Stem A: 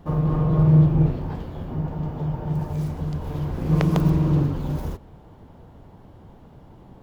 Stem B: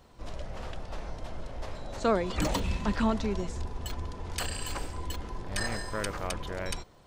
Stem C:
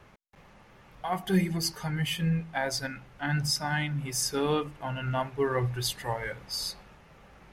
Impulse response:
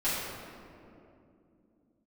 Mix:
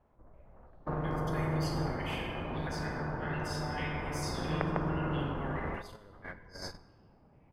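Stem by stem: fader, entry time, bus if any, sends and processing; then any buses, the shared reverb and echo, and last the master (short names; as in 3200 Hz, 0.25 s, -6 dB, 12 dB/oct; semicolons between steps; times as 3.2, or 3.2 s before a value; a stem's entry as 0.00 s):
-6.5 dB, 0.80 s, no bus, no send, LPF 1700 Hz 24 dB/oct; low shelf 110 Hz -3.5 dB
-4.5 dB, 0.00 s, bus A, no send, inverse Chebyshev low-pass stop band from 5200 Hz, stop band 60 dB; compressor 6:1, threshold -36 dBFS, peak gain reduction 15.5 dB
-17.5 dB, 0.00 s, bus A, send -9 dB, stepped high-pass 4.5 Hz 680–5400 Hz
bus A: 0.0 dB, limiter -39 dBFS, peak gain reduction 11 dB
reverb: on, RT60 2.7 s, pre-delay 4 ms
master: gate -41 dBFS, range -19 dB; high shelf 2500 Hz -11.5 dB; spectral compressor 2:1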